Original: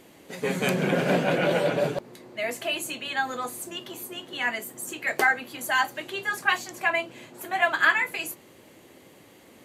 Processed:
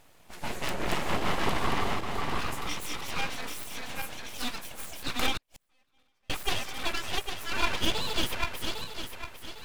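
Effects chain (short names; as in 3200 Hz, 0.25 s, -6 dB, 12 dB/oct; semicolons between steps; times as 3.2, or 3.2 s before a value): regenerating reverse delay 0.402 s, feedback 58%, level -1.5 dB; 5.37–6.3 flipped gate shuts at -24 dBFS, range -40 dB; full-wave rectifier; gain -4.5 dB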